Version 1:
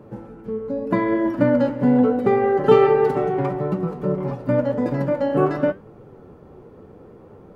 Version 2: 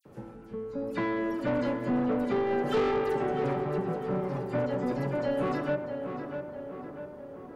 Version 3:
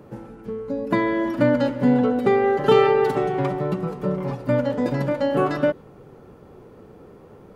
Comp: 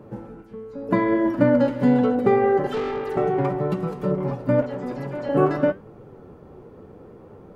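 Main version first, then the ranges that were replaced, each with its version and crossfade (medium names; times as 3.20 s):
1
0.42–0.89 s: from 2
1.68–2.15 s: from 3
2.67–3.17 s: from 2
3.70–4.11 s: from 3
4.62–5.29 s: from 2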